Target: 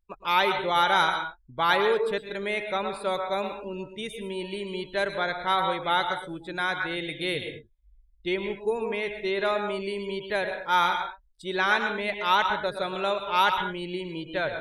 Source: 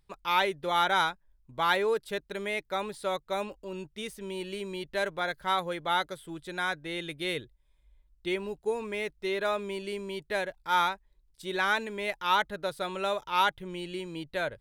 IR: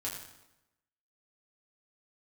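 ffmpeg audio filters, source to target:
-filter_complex "[0:a]asplit=2[s0][s1];[1:a]atrim=start_sample=2205,atrim=end_sample=6174,adelay=108[s2];[s1][s2]afir=irnorm=-1:irlink=0,volume=0.473[s3];[s0][s3]amix=inputs=2:normalize=0,afftdn=nr=21:nf=-50,volume=1.41"

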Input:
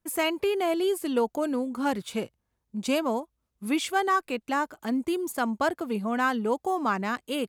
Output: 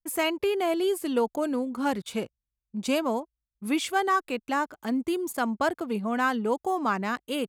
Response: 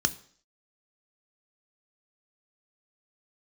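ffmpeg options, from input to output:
-af "anlmdn=0.00631"

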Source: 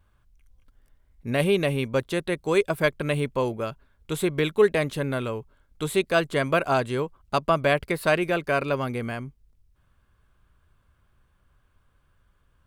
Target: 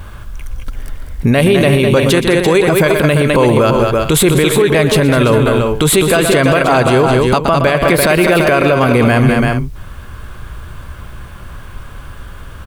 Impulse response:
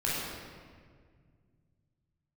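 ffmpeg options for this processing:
-af "acompressor=threshold=0.0224:ratio=12,aecho=1:1:120|206|339|396:0.168|0.355|0.316|0.119,alimiter=level_in=50.1:limit=0.891:release=50:level=0:latency=1,volume=0.891"

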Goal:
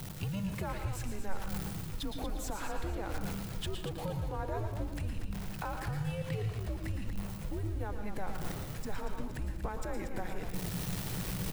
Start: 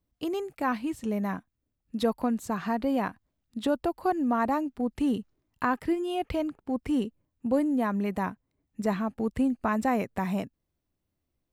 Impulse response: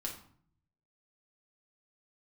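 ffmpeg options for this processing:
-filter_complex "[0:a]aeval=exprs='val(0)+0.5*0.0112*sgn(val(0))':c=same,bandreject=f=60:t=h:w=6,bandreject=f=120:t=h:w=6,bandreject=f=180:t=h:w=6,bandreject=f=240:t=h:w=6,areverse,acompressor=mode=upward:threshold=0.0316:ratio=2.5,areverse,alimiter=limit=0.0668:level=0:latency=1:release=19,acompressor=threshold=0.0178:ratio=6,afreqshift=-200,asplit=5[s0][s1][s2][s3][s4];[s1]adelay=235,afreqshift=-51,volume=0.355[s5];[s2]adelay=470,afreqshift=-102,volume=0.12[s6];[s3]adelay=705,afreqshift=-153,volume=0.0412[s7];[s4]adelay=940,afreqshift=-204,volume=0.014[s8];[s0][s5][s6][s7][s8]amix=inputs=5:normalize=0,asplit=2[s9][s10];[1:a]atrim=start_sample=2205,adelay=112[s11];[s10][s11]afir=irnorm=-1:irlink=0,volume=0.531[s12];[s9][s12]amix=inputs=2:normalize=0"

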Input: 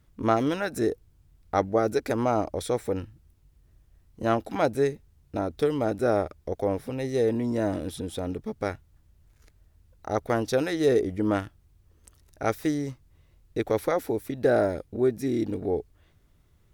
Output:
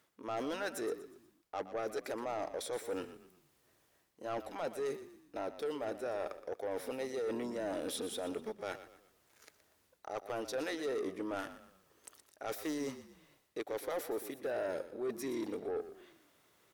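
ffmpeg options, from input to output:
-filter_complex "[0:a]highpass=430,areverse,acompressor=threshold=0.0126:ratio=4,areverse,asoftclip=type=tanh:threshold=0.0168,asplit=5[s0][s1][s2][s3][s4];[s1]adelay=120,afreqshift=-33,volume=0.224[s5];[s2]adelay=240,afreqshift=-66,volume=0.0891[s6];[s3]adelay=360,afreqshift=-99,volume=0.0359[s7];[s4]adelay=480,afreqshift=-132,volume=0.0143[s8];[s0][s5][s6][s7][s8]amix=inputs=5:normalize=0,volume=1.68"

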